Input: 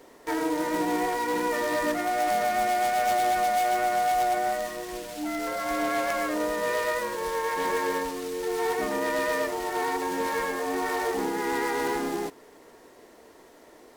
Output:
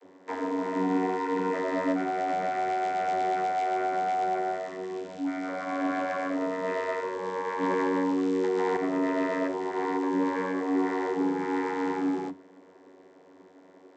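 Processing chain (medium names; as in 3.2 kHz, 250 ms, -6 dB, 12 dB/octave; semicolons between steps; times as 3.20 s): vocoder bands 32, saw 93.3 Hz; on a send at -12 dB: reverberation RT60 0.30 s, pre-delay 7 ms; 7.63–8.77 s: on the sum: level flattener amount 100%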